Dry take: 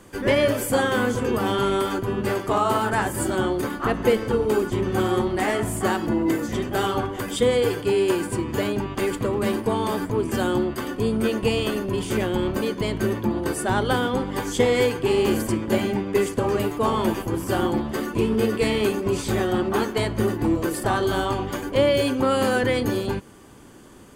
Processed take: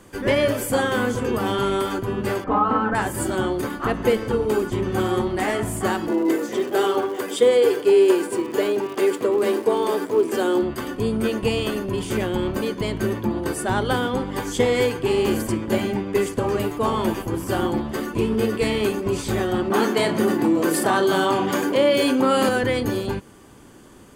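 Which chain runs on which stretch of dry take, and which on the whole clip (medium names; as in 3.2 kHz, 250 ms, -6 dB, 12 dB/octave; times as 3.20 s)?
2.44–2.95 s: low-pass 1.5 kHz + comb 3.9 ms, depth 98%
6.07–10.61 s: peaking EQ 410 Hz +8 dB 0.73 oct + crackle 200 per s -33 dBFS + high-pass 310 Hz
19.70–22.49 s: high-pass 160 Hz 24 dB/octave + doubling 31 ms -11 dB + level flattener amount 50%
whole clip: none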